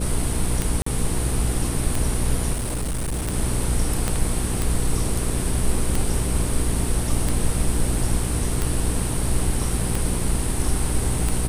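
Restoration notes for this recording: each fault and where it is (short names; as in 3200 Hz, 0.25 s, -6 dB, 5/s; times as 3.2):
hum 60 Hz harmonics 8 -26 dBFS
tick 45 rpm
0.82–0.86 gap 44 ms
2.53–3.34 clipped -22 dBFS
4.08 pop -8 dBFS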